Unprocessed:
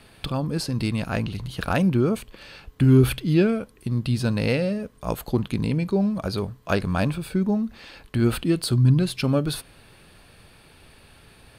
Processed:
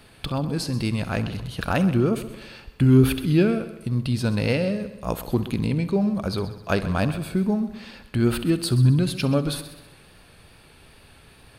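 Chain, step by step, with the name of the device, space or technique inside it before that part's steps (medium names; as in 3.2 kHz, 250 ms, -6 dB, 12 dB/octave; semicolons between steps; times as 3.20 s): multi-head tape echo (multi-head delay 65 ms, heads first and second, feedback 50%, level -16.5 dB; wow and flutter 24 cents)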